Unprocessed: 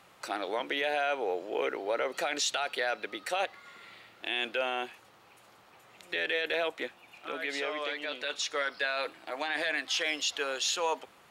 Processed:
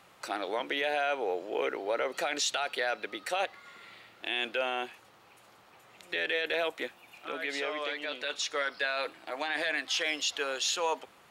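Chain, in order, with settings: 6.58–7.24 s: treble shelf 10 kHz +8 dB

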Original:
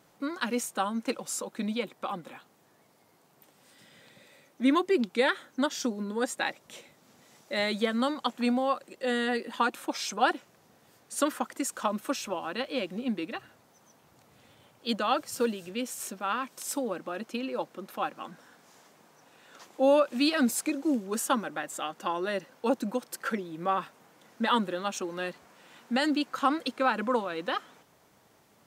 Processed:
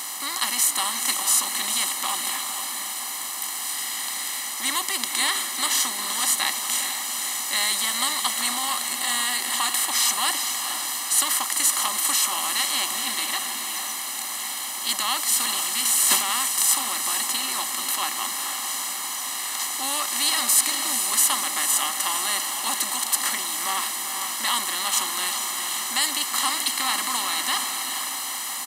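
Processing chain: spectral levelling over time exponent 0.4; differentiator; comb 1 ms, depth 84%; echo that smears into a reverb 464 ms, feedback 57%, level -6.5 dB; 15.85–16.39 s: transient shaper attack -1 dB, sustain +12 dB; trim +7 dB

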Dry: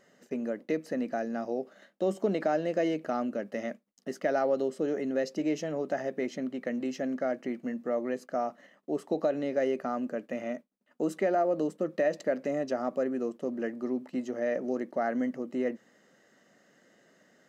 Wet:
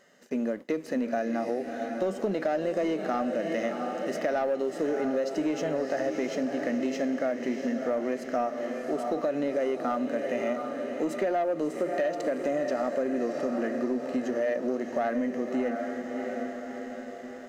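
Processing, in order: bass shelf 330 Hz -7.5 dB; echo that smears into a reverb 672 ms, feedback 58%, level -10 dB; harmonic-percussive split harmonic +8 dB; waveshaping leveller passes 1; compression, threshold -25 dBFS, peak gain reduction 9 dB

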